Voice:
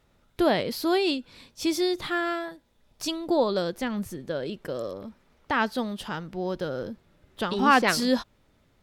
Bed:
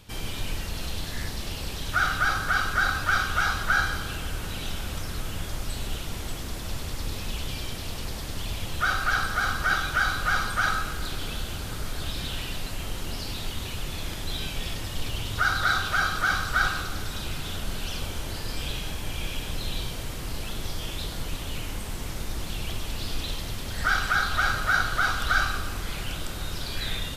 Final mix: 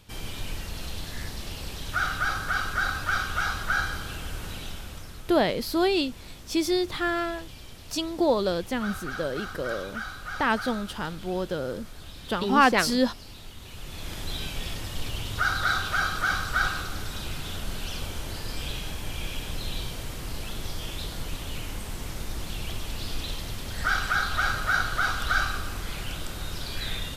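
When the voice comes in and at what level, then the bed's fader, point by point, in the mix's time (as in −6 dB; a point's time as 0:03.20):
4.90 s, +0.5 dB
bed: 0:04.51 −3 dB
0:05.31 −11.5 dB
0:13.58 −11.5 dB
0:14.18 −1.5 dB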